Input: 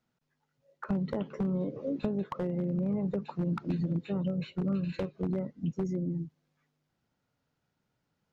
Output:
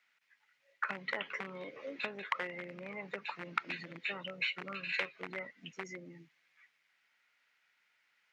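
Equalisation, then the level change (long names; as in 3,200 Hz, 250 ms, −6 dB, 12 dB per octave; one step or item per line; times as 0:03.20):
high-pass with resonance 2,100 Hz, resonance Q 3.4
spectral tilt −3.5 dB per octave
+12.5 dB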